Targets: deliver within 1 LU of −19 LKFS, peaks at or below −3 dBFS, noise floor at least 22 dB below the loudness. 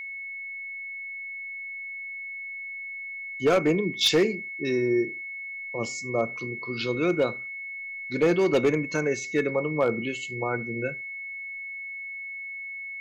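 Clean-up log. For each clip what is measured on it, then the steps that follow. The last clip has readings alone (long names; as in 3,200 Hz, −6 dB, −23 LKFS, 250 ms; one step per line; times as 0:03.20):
share of clipped samples 0.5%; peaks flattened at −15.0 dBFS; interfering tone 2,200 Hz; level of the tone −34 dBFS; integrated loudness −28.0 LKFS; sample peak −15.0 dBFS; target loudness −19.0 LKFS
→ clipped peaks rebuilt −15 dBFS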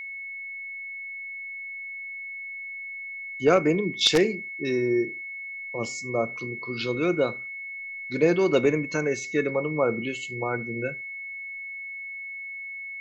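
share of clipped samples 0.0%; interfering tone 2,200 Hz; level of the tone −34 dBFS
→ notch filter 2,200 Hz, Q 30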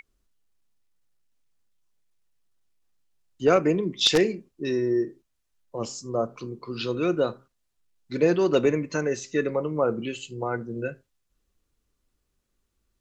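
interfering tone none found; integrated loudness −25.5 LKFS; sample peak −6.0 dBFS; target loudness −19.0 LKFS
→ level +6.5 dB
brickwall limiter −3 dBFS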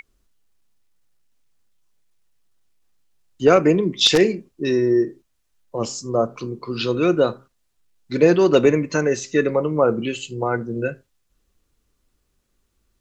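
integrated loudness −19.5 LKFS; sample peak −3.0 dBFS; background noise floor −70 dBFS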